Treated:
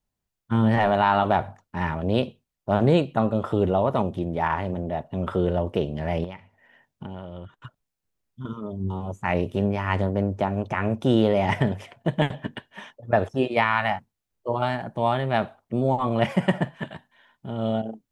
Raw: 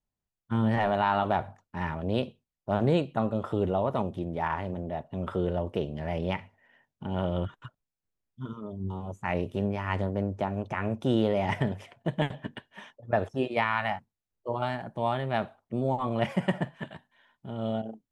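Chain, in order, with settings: 6.24–8.45 compressor 8:1, threshold -39 dBFS, peak gain reduction 15.5 dB; gain +5.5 dB

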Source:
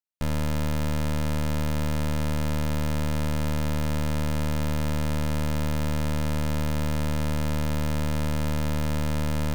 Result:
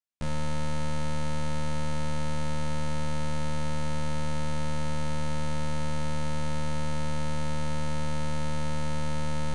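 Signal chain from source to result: flutter echo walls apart 3.2 m, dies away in 0.29 s; downsampling 22050 Hz; gain -5 dB

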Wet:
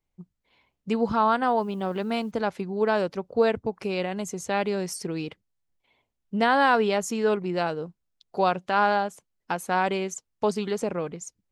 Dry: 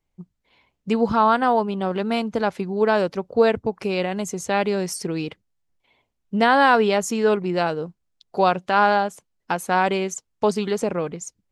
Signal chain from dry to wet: 1.59–2.3 added noise white -63 dBFS; gain -4.5 dB

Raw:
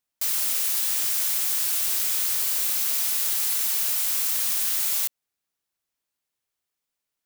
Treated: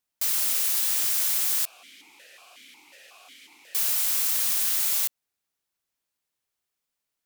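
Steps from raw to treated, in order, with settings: 1.65–3.75 vowel sequencer 5.5 Hz

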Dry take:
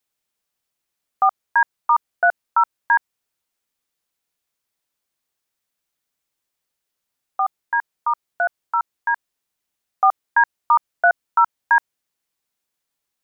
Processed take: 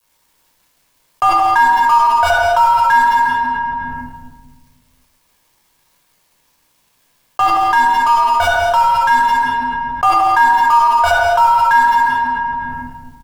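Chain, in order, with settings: G.711 law mismatch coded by A; bell 920 Hz +8.5 dB 0.27 oct; in parallel at -7.5 dB: fuzz box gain 29 dB, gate -37 dBFS; on the sum: tapped delay 0.174/0.221 s -9.5/-13 dB; reverb RT60 1.2 s, pre-delay 10 ms, DRR -4.5 dB; fast leveller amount 70%; gain -11 dB

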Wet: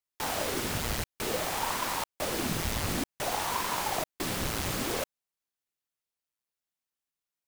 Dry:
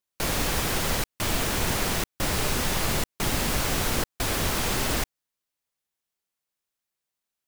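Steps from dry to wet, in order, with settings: ring modulator with a swept carrier 530 Hz, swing 90%, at 0.55 Hz; gain -3 dB

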